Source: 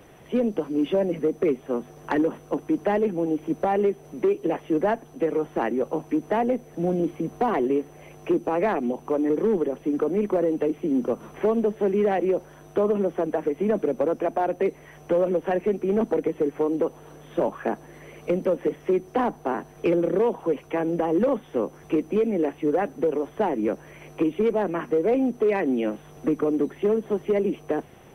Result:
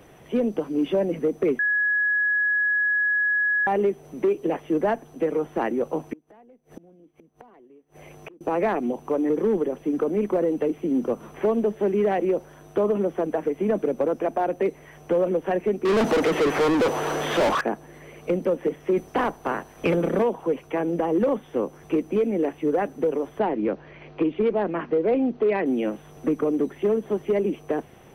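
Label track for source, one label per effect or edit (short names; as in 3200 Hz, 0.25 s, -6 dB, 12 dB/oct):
1.590000	3.670000	bleep 1680 Hz -19 dBFS
6.130000	8.410000	flipped gate shuts at -27 dBFS, range -29 dB
15.850000	17.610000	overdrive pedal drive 34 dB, tone 3600 Hz, clips at -14.5 dBFS
18.960000	20.220000	spectral limiter ceiling under each frame's peak by 12 dB
23.390000	25.660000	steep low-pass 4900 Hz 48 dB/oct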